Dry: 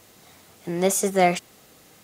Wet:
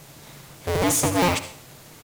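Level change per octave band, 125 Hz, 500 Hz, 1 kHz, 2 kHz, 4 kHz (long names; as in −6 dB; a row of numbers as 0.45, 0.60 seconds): +4.0, −2.5, −1.0, +1.5, +5.5 decibels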